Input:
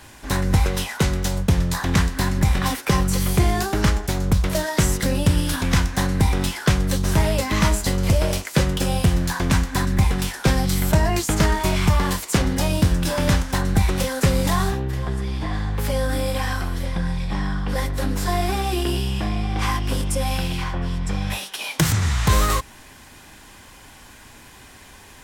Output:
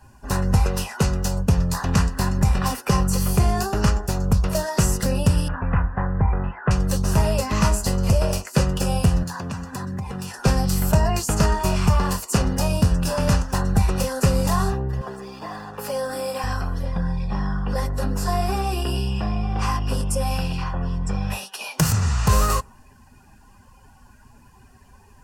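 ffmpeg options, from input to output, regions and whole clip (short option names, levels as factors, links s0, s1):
-filter_complex "[0:a]asettb=1/sr,asplit=3[s0][s1][s2];[s0]atrim=end=5.484[s3];[s1]atrim=start=5.48:end=6.71,asetpts=PTS-STARTPTS,afade=t=in:d=0.004:c=qsin,afade=t=out:st=1.226:d=0.004:c=qsin,lowpass=f=2000:w=0.5412,lowpass=f=2000:w=1.3066,equalizer=f=270:t=o:w=1.4:g=-6[s4];[s2]atrim=start=6.706[s5];[s3][s4]acrossfade=d=0.004:c1=hsin:c2=qsin[s6];[s6][s5]acrossfade=d=0.004:c1=qsin:c2=hsin,asettb=1/sr,asplit=3[s7][s8][s9];[s7]atrim=end=9.234[s10];[s8]atrim=start=9.23:end=10.38,asetpts=PTS-STARTPTS,afade=t=in:d=0.004:c=qsin,afade=t=out:st=1.146:d=0.004:c=qsin,highpass=f=84:w=0.5412,highpass=f=84:w=1.3066,acompressor=threshold=0.0562:ratio=5:attack=3.2:release=140:knee=1:detection=peak,aeval=exprs='sgn(val(0))*max(abs(val(0))-0.00112,0)':c=same[s11];[s9]atrim=start=10.376[s12];[s10][s11]acrossfade=d=0.004:c1=hsin:c2=qsin[s13];[s13][s12]acrossfade=d=0.004:c1=qsin:c2=hsin,asettb=1/sr,asplit=3[s14][s15][s16];[s14]atrim=end=15.014[s17];[s15]atrim=start=15.01:end=16.44,asetpts=PTS-STARTPTS,afade=t=in:d=0.004:c=qsin,afade=t=out:st=1.426:d=0.004:c=qsin,highpass=290,acrusher=bits=5:mix=0:aa=0.5[s18];[s16]atrim=start=16.436[s19];[s17][s18]acrossfade=d=0.004:c1=hsin:c2=qsin[s20];[s20][s19]acrossfade=d=0.004:c1=qsin:c2=hsin,bandreject=f=2200:w=5.1,afftdn=nr=14:nf=-42,superequalizer=6b=0.398:11b=0.631:13b=0.355"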